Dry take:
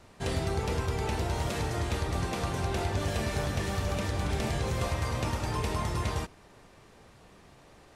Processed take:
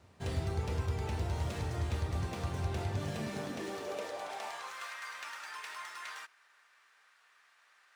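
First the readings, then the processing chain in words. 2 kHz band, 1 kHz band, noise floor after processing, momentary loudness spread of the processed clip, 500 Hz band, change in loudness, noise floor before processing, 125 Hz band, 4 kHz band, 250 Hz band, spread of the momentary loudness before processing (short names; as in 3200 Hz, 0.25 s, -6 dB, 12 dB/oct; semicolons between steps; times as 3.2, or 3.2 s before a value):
-5.5 dB, -7.5 dB, -67 dBFS, 7 LU, -7.5 dB, -6.5 dB, -56 dBFS, -5.5 dB, -8.0 dB, -8.0 dB, 1 LU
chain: median filter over 3 samples; high-pass sweep 78 Hz -> 1500 Hz, 2.68–4.87; gain -8 dB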